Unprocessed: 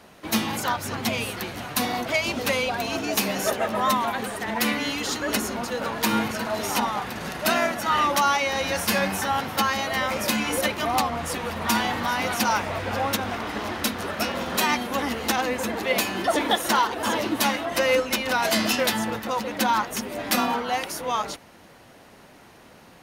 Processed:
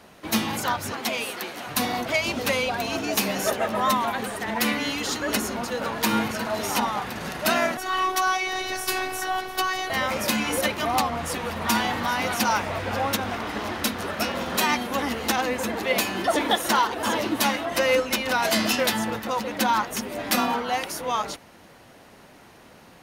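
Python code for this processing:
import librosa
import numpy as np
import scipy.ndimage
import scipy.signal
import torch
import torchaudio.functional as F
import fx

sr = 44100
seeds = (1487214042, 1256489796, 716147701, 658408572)

y = fx.highpass(x, sr, hz=300.0, slope=12, at=(0.92, 1.67))
y = fx.robotise(y, sr, hz=373.0, at=(7.77, 9.9))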